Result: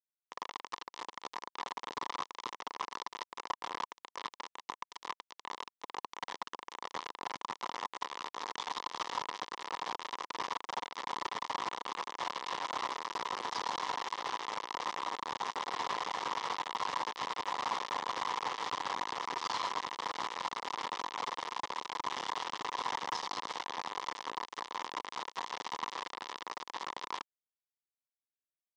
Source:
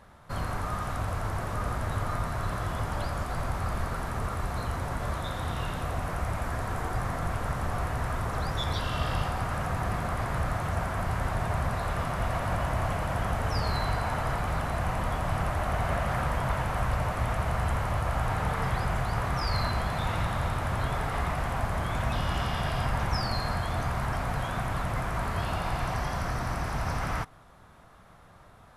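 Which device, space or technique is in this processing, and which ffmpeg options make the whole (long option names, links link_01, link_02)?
hand-held game console: -filter_complex "[0:a]asettb=1/sr,asplit=3[link_01][link_02][link_03];[link_01]atrim=end=20.234[link_04];[link_02]atrim=start=20.23:end=20.76,asetpts=PTS-STARTPTS,afade=type=in:duration=0.004:curve=qsin,afade=type=out:start_time=0.526:duration=0.004:curve=qsin,bandreject=frequency=146.8:width_type=h:width=4,bandreject=frequency=293.6:width_type=h:width=4,bandreject=frequency=440.4:width_type=h:width=4,bandreject=frequency=587.2:width_type=h:width=4,bandreject=frequency=734:width_type=h:width=4,bandreject=frequency=880.8:width_type=h:width=4,bandreject=frequency=1027.6:width_type=h:width=4,bandreject=frequency=1174.4:width_type=h:width=4,bandreject=frequency=1321.2:width_type=h:width=4,bandreject=frequency=1468:width_type=h:width=4,bandreject=frequency=1614.8:width_type=h:width=4,bandreject=frequency=1761.6:width_type=h:width=4[link_05];[link_03]atrim=start=20.756[link_06];[link_04][link_05]acrossfade=duration=0.004:curve1=hsin:curve2=qsin[link_07];[link_07][link_06]acrossfade=duration=0.004:curve1=qsin:curve2=hsin,acrusher=bits=3:mix=0:aa=0.000001,highpass=490,equalizer=frequency=640:width_type=q:width=4:gain=-10,equalizer=frequency=1000:width_type=q:width=4:gain=9,equalizer=frequency=1500:width_type=q:width=4:gain=-10,equalizer=frequency=2500:width_type=q:width=4:gain=-8,equalizer=frequency=4400:width_type=q:width=4:gain=-4,lowpass=frequency=5400:width=0.5412,lowpass=frequency=5400:width=1.3066,volume=-5.5dB"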